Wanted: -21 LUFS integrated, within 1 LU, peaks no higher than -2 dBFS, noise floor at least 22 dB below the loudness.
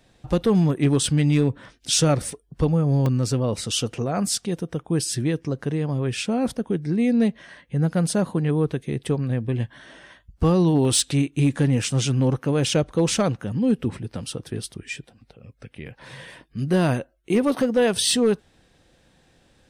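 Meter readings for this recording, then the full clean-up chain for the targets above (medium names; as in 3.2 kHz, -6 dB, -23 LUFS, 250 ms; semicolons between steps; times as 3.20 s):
clipped samples 0.4%; clipping level -12.0 dBFS; dropouts 4; longest dropout 1.8 ms; loudness -22.5 LUFS; peak level -12.0 dBFS; loudness target -21.0 LUFS
-> clip repair -12 dBFS; interpolate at 3.06/10.85/12.69/17.60 s, 1.8 ms; trim +1.5 dB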